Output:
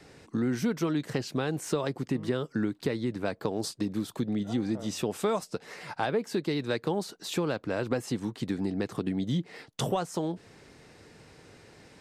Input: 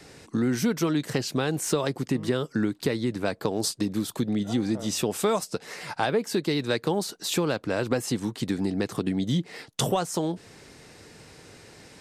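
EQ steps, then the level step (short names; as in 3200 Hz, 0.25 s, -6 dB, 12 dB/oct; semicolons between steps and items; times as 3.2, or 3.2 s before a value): high shelf 4400 Hz -7.5 dB; -3.5 dB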